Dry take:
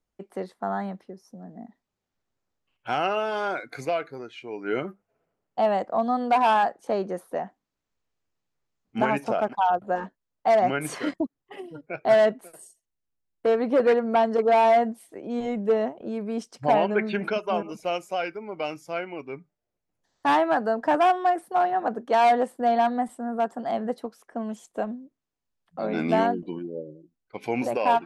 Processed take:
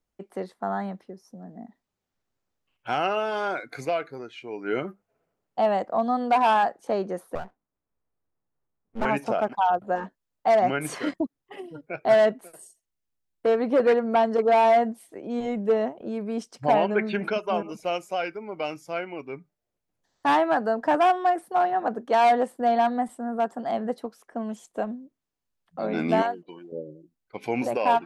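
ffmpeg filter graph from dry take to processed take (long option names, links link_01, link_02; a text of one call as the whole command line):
ffmpeg -i in.wav -filter_complex "[0:a]asettb=1/sr,asplit=3[link_01][link_02][link_03];[link_01]atrim=end=7.354[link_04];[link_02]atrim=start=7.35:end=9.05,asetpts=PTS-STARTPTS,afade=type=in:duration=0.004:curve=qsin,afade=type=out:start_time=1.696:duration=0.004:curve=qsin,lowpass=1300,aeval=exprs='max(val(0),0)':channel_layout=same[link_05];[link_03]atrim=start=9.046[link_06];[link_04][link_05]acrossfade=duration=0.004:curve1=hsin:curve2=qsin[link_07];[link_07][link_06]acrossfade=duration=0.004:curve1=qsin:curve2=hsin,asettb=1/sr,asplit=3[link_08][link_09][link_10];[link_08]atrim=end=26.224[link_11];[link_09]atrim=start=26.22:end=26.72,asetpts=PTS-STARTPTS,afade=type=in:duration=0.004:curve=qsin,afade=type=out:start_time=0.496:duration=0.004:curve=qsin,highpass=190,equalizer=frequency=240:width_type=o:width=1.5:gain=-14.5,agate=range=-9dB:threshold=-49dB:ratio=16:release=100:detection=peak[link_12];[link_10]atrim=start=26.716[link_13];[link_11][link_12]acrossfade=duration=0.004:curve1=hsin:curve2=qsin[link_14];[link_14][link_13]acrossfade=duration=0.004:curve1=qsin:curve2=hsin" out.wav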